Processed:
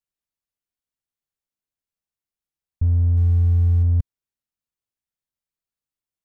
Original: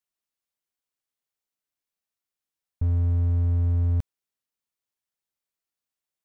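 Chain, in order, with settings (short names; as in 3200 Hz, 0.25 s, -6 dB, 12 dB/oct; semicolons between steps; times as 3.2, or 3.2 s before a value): 3.17–3.83 zero-crossing step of -36 dBFS; low shelf 200 Hz +12 dB; gain -5 dB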